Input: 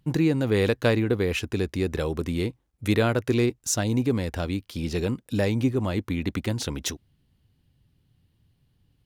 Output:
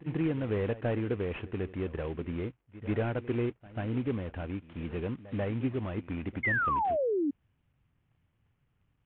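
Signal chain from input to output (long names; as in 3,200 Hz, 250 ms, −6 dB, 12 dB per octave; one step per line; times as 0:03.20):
variable-slope delta modulation 16 kbit/s
backwards echo 140 ms −17 dB
sound drawn into the spectrogram fall, 0:06.43–0:07.31, 270–2,200 Hz −21 dBFS
level −7.5 dB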